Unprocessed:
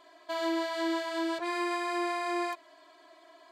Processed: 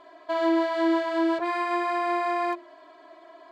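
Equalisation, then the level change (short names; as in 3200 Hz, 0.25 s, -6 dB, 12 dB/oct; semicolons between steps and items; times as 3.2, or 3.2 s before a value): LPF 1200 Hz 6 dB/oct; notches 50/100/150/200/250/300/350 Hz; +9.0 dB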